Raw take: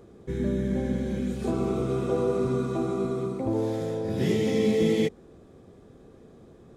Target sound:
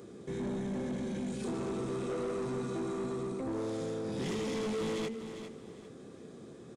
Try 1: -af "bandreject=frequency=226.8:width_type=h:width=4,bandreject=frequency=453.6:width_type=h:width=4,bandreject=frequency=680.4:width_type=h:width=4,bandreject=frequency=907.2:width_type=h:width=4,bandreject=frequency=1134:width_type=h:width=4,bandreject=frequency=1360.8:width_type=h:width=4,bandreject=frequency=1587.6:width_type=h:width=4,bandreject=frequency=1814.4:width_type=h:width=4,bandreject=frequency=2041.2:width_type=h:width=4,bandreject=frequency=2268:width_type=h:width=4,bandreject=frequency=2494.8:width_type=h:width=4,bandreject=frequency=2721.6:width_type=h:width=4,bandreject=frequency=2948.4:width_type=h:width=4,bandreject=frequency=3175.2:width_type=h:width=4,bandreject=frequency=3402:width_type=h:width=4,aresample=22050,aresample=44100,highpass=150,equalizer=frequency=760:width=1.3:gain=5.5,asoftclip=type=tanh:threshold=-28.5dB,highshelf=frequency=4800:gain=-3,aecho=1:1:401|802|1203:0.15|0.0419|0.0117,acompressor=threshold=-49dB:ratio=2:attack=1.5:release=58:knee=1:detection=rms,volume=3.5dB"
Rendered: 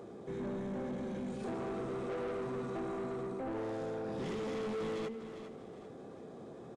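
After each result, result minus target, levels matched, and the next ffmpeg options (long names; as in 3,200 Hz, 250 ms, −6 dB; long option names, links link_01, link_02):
8,000 Hz band −7.5 dB; 1,000 Hz band +3.5 dB; downward compressor: peak gain reduction +3.5 dB
-af "bandreject=frequency=226.8:width_type=h:width=4,bandreject=frequency=453.6:width_type=h:width=4,bandreject=frequency=680.4:width_type=h:width=4,bandreject=frequency=907.2:width_type=h:width=4,bandreject=frequency=1134:width_type=h:width=4,bandreject=frequency=1360.8:width_type=h:width=4,bandreject=frequency=1587.6:width_type=h:width=4,bandreject=frequency=1814.4:width_type=h:width=4,bandreject=frequency=2041.2:width_type=h:width=4,bandreject=frequency=2268:width_type=h:width=4,bandreject=frequency=2494.8:width_type=h:width=4,bandreject=frequency=2721.6:width_type=h:width=4,bandreject=frequency=2948.4:width_type=h:width=4,bandreject=frequency=3175.2:width_type=h:width=4,bandreject=frequency=3402:width_type=h:width=4,aresample=22050,aresample=44100,highpass=150,equalizer=frequency=760:width=1.3:gain=5.5,asoftclip=type=tanh:threshold=-28.5dB,highshelf=frequency=4800:gain=6.5,aecho=1:1:401|802|1203:0.15|0.0419|0.0117,acompressor=threshold=-49dB:ratio=2:attack=1.5:release=58:knee=1:detection=rms,volume=3.5dB"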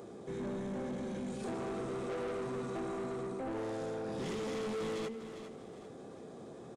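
1,000 Hz band +3.5 dB; downward compressor: peak gain reduction +3.5 dB
-af "bandreject=frequency=226.8:width_type=h:width=4,bandreject=frequency=453.6:width_type=h:width=4,bandreject=frequency=680.4:width_type=h:width=4,bandreject=frequency=907.2:width_type=h:width=4,bandreject=frequency=1134:width_type=h:width=4,bandreject=frequency=1360.8:width_type=h:width=4,bandreject=frequency=1587.6:width_type=h:width=4,bandreject=frequency=1814.4:width_type=h:width=4,bandreject=frequency=2041.2:width_type=h:width=4,bandreject=frequency=2268:width_type=h:width=4,bandreject=frequency=2494.8:width_type=h:width=4,bandreject=frequency=2721.6:width_type=h:width=4,bandreject=frequency=2948.4:width_type=h:width=4,bandreject=frequency=3175.2:width_type=h:width=4,bandreject=frequency=3402:width_type=h:width=4,aresample=22050,aresample=44100,highpass=150,equalizer=frequency=760:width=1.3:gain=-5,asoftclip=type=tanh:threshold=-28.5dB,highshelf=frequency=4800:gain=6.5,aecho=1:1:401|802|1203:0.15|0.0419|0.0117,acompressor=threshold=-49dB:ratio=2:attack=1.5:release=58:knee=1:detection=rms,volume=3.5dB"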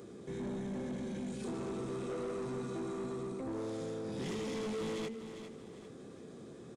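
downward compressor: peak gain reduction +3.5 dB
-af "bandreject=frequency=226.8:width_type=h:width=4,bandreject=frequency=453.6:width_type=h:width=4,bandreject=frequency=680.4:width_type=h:width=4,bandreject=frequency=907.2:width_type=h:width=4,bandreject=frequency=1134:width_type=h:width=4,bandreject=frequency=1360.8:width_type=h:width=4,bandreject=frequency=1587.6:width_type=h:width=4,bandreject=frequency=1814.4:width_type=h:width=4,bandreject=frequency=2041.2:width_type=h:width=4,bandreject=frequency=2268:width_type=h:width=4,bandreject=frequency=2494.8:width_type=h:width=4,bandreject=frequency=2721.6:width_type=h:width=4,bandreject=frequency=2948.4:width_type=h:width=4,bandreject=frequency=3175.2:width_type=h:width=4,bandreject=frequency=3402:width_type=h:width=4,aresample=22050,aresample=44100,highpass=150,equalizer=frequency=760:width=1.3:gain=-5,asoftclip=type=tanh:threshold=-28.5dB,highshelf=frequency=4800:gain=6.5,aecho=1:1:401|802|1203:0.15|0.0419|0.0117,acompressor=threshold=-42dB:ratio=2:attack=1.5:release=58:knee=1:detection=rms,volume=3.5dB"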